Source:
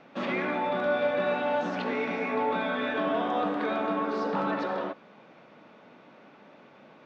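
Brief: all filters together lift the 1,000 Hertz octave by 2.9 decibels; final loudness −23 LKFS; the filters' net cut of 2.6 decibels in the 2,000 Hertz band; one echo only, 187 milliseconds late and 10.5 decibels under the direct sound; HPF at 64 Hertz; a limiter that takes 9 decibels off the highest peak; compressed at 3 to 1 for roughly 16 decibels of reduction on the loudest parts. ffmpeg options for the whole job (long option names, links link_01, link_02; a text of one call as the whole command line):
ffmpeg -i in.wav -af "highpass=64,equalizer=frequency=1000:width_type=o:gain=5,equalizer=frequency=2000:width_type=o:gain=-6,acompressor=threshold=-45dB:ratio=3,alimiter=level_in=15.5dB:limit=-24dB:level=0:latency=1,volume=-15.5dB,aecho=1:1:187:0.299,volume=25dB" out.wav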